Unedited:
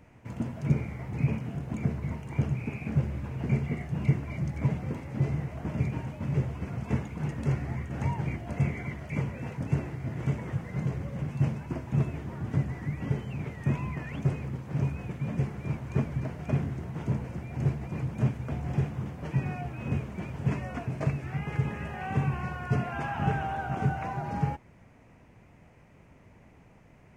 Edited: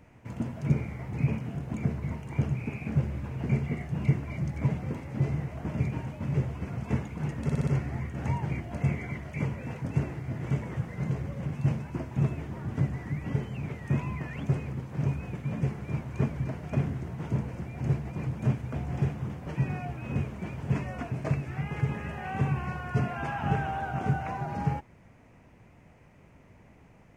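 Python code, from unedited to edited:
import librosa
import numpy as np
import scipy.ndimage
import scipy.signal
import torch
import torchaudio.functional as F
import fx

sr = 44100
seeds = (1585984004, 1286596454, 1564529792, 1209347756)

y = fx.edit(x, sr, fx.stutter(start_s=7.43, slice_s=0.06, count=5), tone=tone)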